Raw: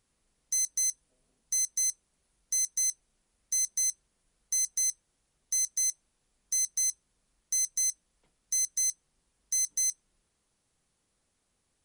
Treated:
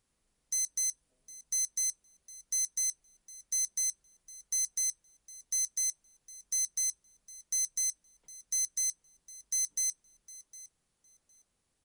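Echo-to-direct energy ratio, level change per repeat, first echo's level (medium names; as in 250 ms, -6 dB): -18.5 dB, -15.0 dB, -18.5 dB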